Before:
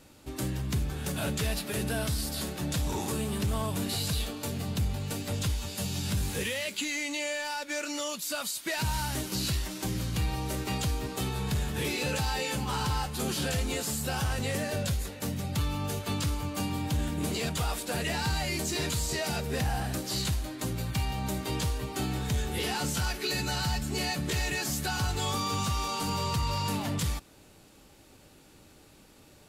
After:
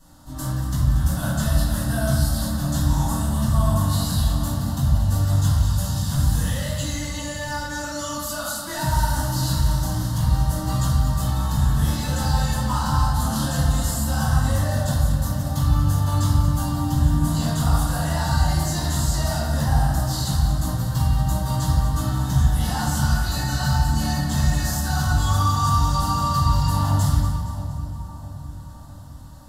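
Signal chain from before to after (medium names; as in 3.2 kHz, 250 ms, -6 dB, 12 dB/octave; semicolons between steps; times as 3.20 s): static phaser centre 1 kHz, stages 4; two-band feedback delay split 970 Hz, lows 660 ms, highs 233 ms, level -11 dB; reverberation RT60 1.4 s, pre-delay 3 ms, DRR -11 dB; trim -3 dB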